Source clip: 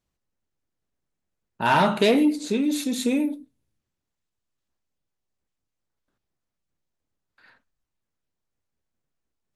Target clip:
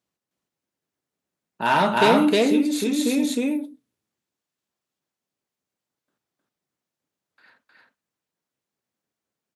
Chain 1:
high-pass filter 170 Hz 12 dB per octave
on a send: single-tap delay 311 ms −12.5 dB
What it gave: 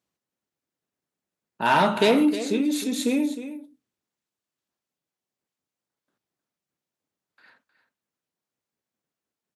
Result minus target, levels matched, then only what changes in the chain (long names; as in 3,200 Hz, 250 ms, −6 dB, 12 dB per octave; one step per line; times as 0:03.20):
echo-to-direct −12 dB
change: single-tap delay 311 ms −0.5 dB